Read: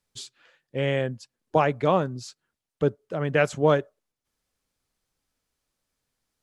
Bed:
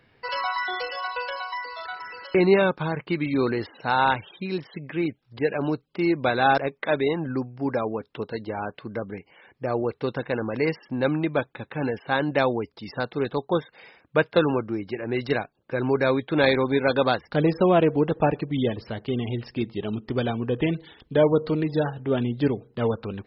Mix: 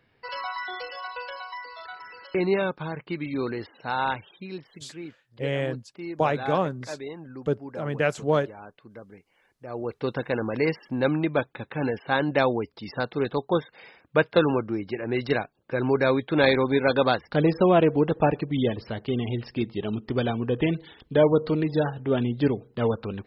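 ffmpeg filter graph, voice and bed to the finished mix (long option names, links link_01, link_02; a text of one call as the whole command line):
ffmpeg -i stem1.wav -i stem2.wav -filter_complex "[0:a]adelay=4650,volume=-2.5dB[link_01];[1:a]volume=7.5dB,afade=type=out:start_time=4.17:duration=0.82:silence=0.421697,afade=type=in:start_time=9.65:duration=0.46:silence=0.223872[link_02];[link_01][link_02]amix=inputs=2:normalize=0" out.wav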